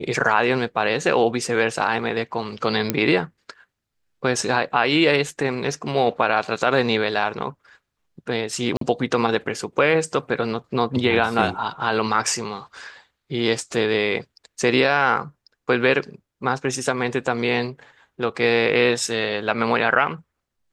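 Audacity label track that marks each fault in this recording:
2.900000	2.900000	pop -4 dBFS
8.770000	8.810000	gap 43 ms

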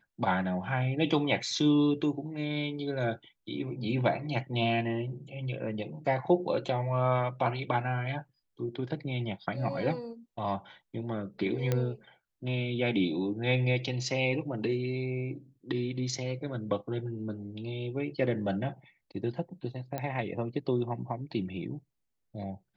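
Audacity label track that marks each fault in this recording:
11.720000	11.720000	pop -15 dBFS
19.980000	19.980000	pop -21 dBFS

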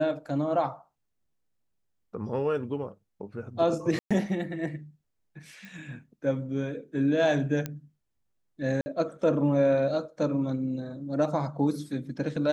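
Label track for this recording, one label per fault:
3.990000	4.110000	gap 0.116 s
5.650000	5.650000	pop
7.660000	7.660000	pop -17 dBFS
8.810000	8.860000	gap 50 ms

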